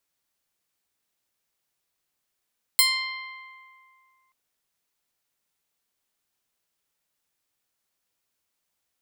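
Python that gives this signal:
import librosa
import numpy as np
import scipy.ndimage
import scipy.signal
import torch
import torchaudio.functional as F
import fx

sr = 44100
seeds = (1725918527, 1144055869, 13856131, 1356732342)

y = fx.pluck(sr, length_s=1.53, note=84, decay_s=2.43, pick=0.16, brightness='bright')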